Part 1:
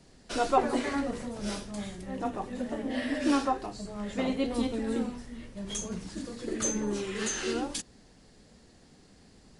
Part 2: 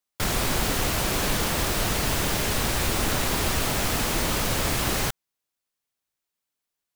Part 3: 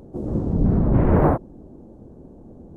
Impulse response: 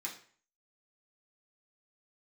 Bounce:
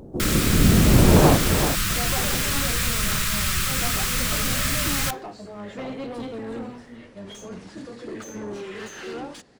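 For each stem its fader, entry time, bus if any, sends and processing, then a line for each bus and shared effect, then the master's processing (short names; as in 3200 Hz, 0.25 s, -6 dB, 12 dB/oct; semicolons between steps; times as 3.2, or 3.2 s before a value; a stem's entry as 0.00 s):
-10.5 dB, 1.60 s, no send, no echo send, octaver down 1 oct, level -6 dB; bell 1000 Hz -2.5 dB; overdrive pedal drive 27 dB, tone 1200 Hz, clips at -12.5 dBFS
+2.0 dB, 0.00 s, send -12 dB, no echo send, Chebyshev band-stop 200–1200 Hz, order 3
+1.5 dB, 0.00 s, no send, echo send -8 dB, dry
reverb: on, RT60 0.45 s, pre-delay 3 ms
echo: echo 0.382 s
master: dry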